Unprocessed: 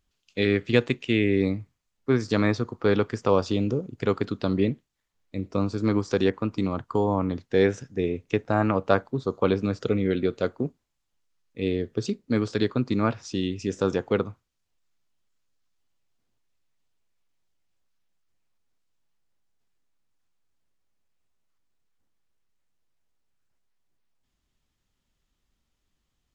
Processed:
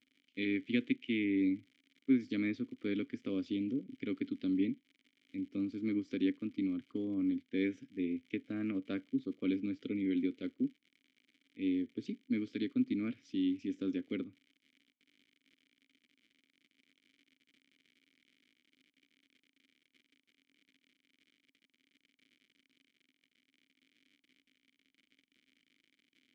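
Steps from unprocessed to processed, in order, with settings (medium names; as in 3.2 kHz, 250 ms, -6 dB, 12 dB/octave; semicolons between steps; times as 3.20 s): crackle 110 per s -35 dBFS; vowel filter i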